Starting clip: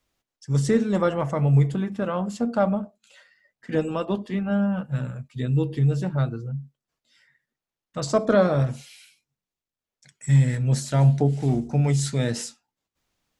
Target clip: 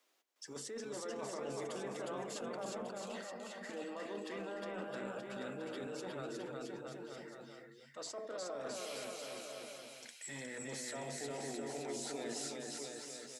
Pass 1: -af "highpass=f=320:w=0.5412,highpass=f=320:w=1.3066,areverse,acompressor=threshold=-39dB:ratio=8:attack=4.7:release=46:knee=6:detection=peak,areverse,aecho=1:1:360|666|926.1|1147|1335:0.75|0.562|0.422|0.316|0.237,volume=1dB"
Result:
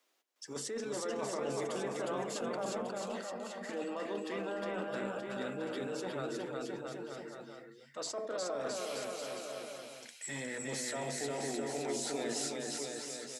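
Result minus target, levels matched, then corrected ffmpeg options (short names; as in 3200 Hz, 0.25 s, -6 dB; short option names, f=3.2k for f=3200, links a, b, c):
compressor: peak gain reduction -5.5 dB
-af "highpass=f=320:w=0.5412,highpass=f=320:w=1.3066,areverse,acompressor=threshold=-45.5dB:ratio=8:attack=4.7:release=46:knee=6:detection=peak,areverse,aecho=1:1:360|666|926.1|1147|1335:0.75|0.562|0.422|0.316|0.237,volume=1dB"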